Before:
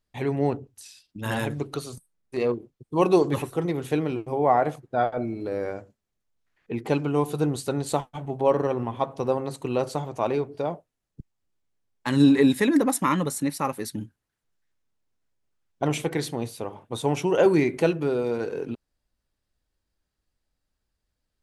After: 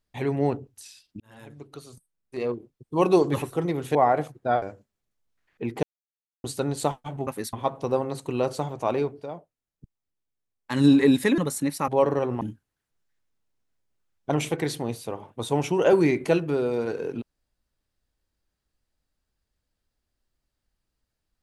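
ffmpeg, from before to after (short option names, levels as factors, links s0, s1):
-filter_complex "[0:a]asplit=13[s0][s1][s2][s3][s4][s5][s6][s7][s8][s9][s10][s11][s12];[s0]atrim=end=1.2,asetpts=PTS-STARTPTS,afade=t=out:st=1.196:d=0.004:c=hsin[s13];[s1]atrim=start=1.2:end=3.952,asetpts=PTS-STARTPTS,afade=t=in:d=1.93[s14];[s2]atrim=start=4.428:end=5.102[s15];[s3]atrim=start=5.708:end=6.92,asetpts=PTS-STARTPTS,afade=t=out:st=1.208:d=0.004:c=hsin[s16];[s4]atrim=start=6.92:end=7.53,asetpts=PTS-STARTPTS,volume=0[s17];[s5]atrim=start=7.53:end=8.362,asetpts=PTS-STARTPTS,afade=t=in:d=0.004:c=hsin[s18];[s6]atrim=start=13.678:end=13.942[s19];[s7]atrim=start=8.888:end=10.61,asetpts=PTS-STARTPTS,afade=t=out:st=1.562:d=0.16:silence=0.398107[s20];[s8]atrim=start=10.61:end=11.99,asetpts=PTS-STARTPTS,volume=0.398[s21];[s9]atrim=start=11.99:end=12.742,asetpts=PTS-STARTPTS,afade=t=in:d=0.16:silence=0.398107[s22];[s10]atrim=start=13.178:end=13.682[s23];[s11]atrim=start=8.358:end=8.892[s24];[s12]atrim=start=13.938[s25];[s13][s14]concat=n=2:v=0:a=1[s26];[s26][s15]acrossfade=d=0.004:c1=hsin:c2=hsin[s27];[s16][s17][s18]concat=n=3:v=0:a=1[s28];[s27][s28]acrossfade=d=0.004:c1=hsin:c2=hsin[s29];[s29][s19]acrossfade=d=0.004:c1=hsin:c2=hsin[s30];[s20][s21][s22]concat=n=3:v=0:a=1[s31];[s30][s31]acrossfade=d=0.004:c1=hsin:c2=hsin[s32];[s32][s23]acrossfade=d=0.004:c1=hsin:c2=hsin[s33];[s33][s24]acrossfade=d=0.004:c1=hsin:c2=hsin[s34];[s34][s25]acrossfade=d=0.004:c1=hsin:c2=hsin"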